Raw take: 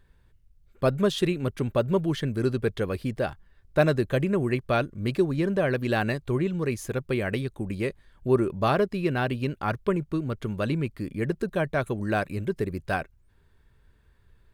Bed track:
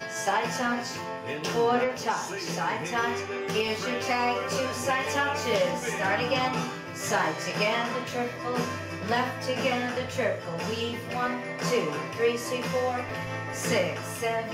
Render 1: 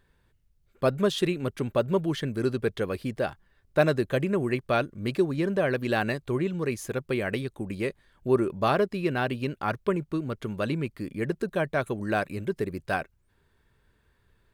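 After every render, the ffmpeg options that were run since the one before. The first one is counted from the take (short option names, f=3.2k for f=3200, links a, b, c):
-af "lowshelf=f=100:g=-10"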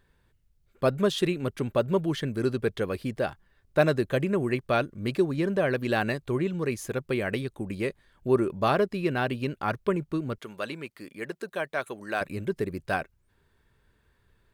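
-filter_complex "[0:a]asettb=1/sr,asplit=3[a][b][c];[a]atrim=end=10.384[d];[b]atrim=start=10.38:end=12.21,asetpts=PTS-STARTPTS,afade=t=in:d=0.004:c=qsin,afade=t=out:st=1.826:d=0.004:c=qsin,highpass=f=740:p=1[e];[c]atrim=start=12.206[f];[d][e]acrossfade=d=0.004:c1=hsin:c2=qsin[g];[g][f]acrossfade=d=0.004:c1=qsin:c2=hsin"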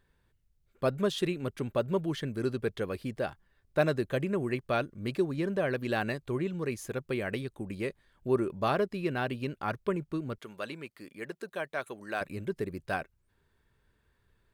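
-af "volume=-4.5dB"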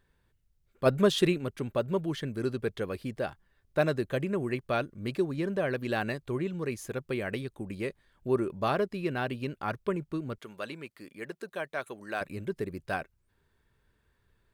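-filter_complex "[0:a]asplit=3[a][b][c];[a]afade=t=out:st=0.85:d=0.02[d];[b]acontrast=38,afade=t=in:st=0.85:d=0.02,afade=t=out:st=1.37:d=0.02[e];[c]afade=t=in:st=1.37:d=0.02[f];[d][e][f]amix=inputs=3:normalize=0"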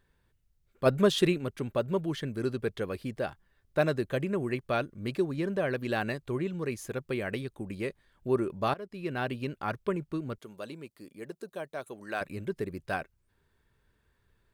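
-filter_complex "[0:a]asettb=1/sr,asplit=3[a][b][c];[a]atrim=end=10.374[d];[b]atrim=start=10.37:end=11.93,asetpts=PTS-STARTPTS,afade=t=in:d=0.004:c=qsin,afade=t=out:st=1.556:d=0.004:c=qsin,equalizer=f=1.9k:t=o:w=1.8:g=-9[e];[c]atrim=start=11.926[f];[d][e]acrossfade=d=0.004:c1=hsin:c2=qsin[g];[g][f]acrossfade=d=0.004:c1=qsin:c2=hsin,asplit=2[h][i];[h]atrim=end=8.74,asetpts=PTS-STARTPTS,afade=t=out:st=8.736:d=0.004:c=hsin:silence=0.0841395[j];[i]atrim=start=8.74,asetpts=PTS-STARTPTS,afade=t=in:d=0.49:silence=0.0841395[k];[j][k]concat=n=2:v=0:a=1"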